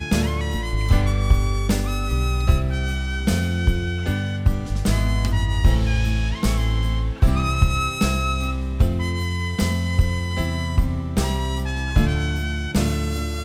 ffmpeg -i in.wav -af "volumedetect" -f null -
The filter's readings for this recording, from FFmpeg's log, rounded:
mean_volume: -20.1 dB
max_volume: -3.3 dB